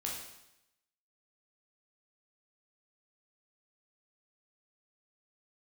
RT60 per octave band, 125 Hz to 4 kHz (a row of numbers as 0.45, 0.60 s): 0.85, 0.85, 0.85, 0.85, 0.85, 0.85 s